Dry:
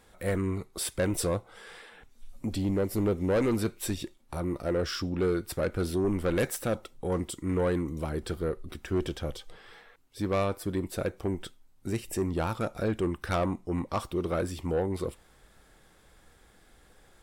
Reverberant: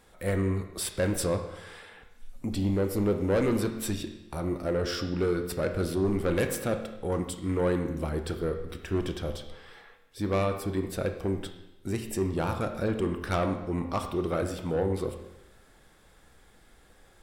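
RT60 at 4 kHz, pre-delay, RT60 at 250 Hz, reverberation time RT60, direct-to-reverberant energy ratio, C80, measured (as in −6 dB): 0.95 s, 23 ms, 0.95 s, 0.95 s, 6.0 dB, 10.0 dB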